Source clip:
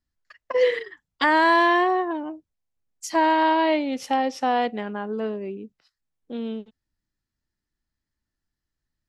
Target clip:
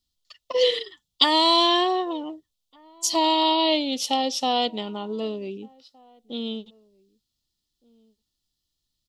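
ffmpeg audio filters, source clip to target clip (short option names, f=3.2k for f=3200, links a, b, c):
-filter_complex "[0:a]asuperstop=centerf=1600:order=20:qfactor=6.4,highshelf=f=2.6k:t=q:w=3:g=9.5,asplit=2[a][b];[b]adelay=1516,volume=-28dB,highshelf=f=4k:g=-34.1[c];[a][c]amix=inputs=2:normalize=0,volume=-1dB"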